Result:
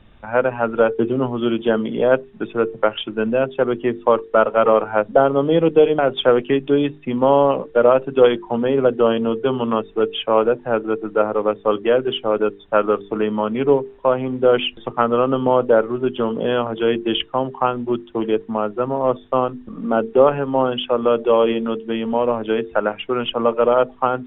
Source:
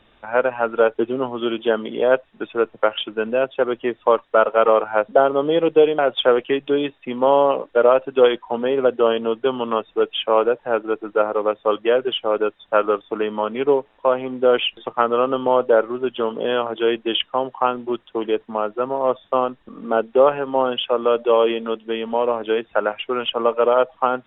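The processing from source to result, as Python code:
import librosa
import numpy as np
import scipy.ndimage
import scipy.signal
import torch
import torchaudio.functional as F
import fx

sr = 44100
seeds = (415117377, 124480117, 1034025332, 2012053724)

y = fx.bass_treble(x, sr, bass_db=14, treble_db=-5)
y = fx.hum_notches(y, sr, base_hz=50, count=9)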